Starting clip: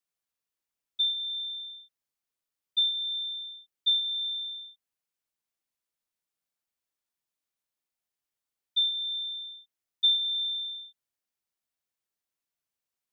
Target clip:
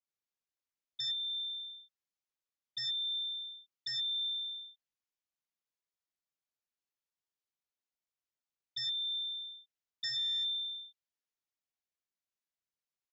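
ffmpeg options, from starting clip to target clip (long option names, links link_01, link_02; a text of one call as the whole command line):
ffmpeg -i in.wav -af "adynamicequalizer=threshold=0.0112:dfrequency=3300:dqfactor=0.83:tfrequency=3300:tqfactor=0.83:attack=5:release=100:ratio=0.375:range=2:mode=boostabove:tftype=bell,aresample=16000,aeval=exprs='0.0668*(abs(mod(val(0)/0.0668+3,4)-2)-1)':channel_layout=same,aresample=44100,volume=-7.5dB" out.wav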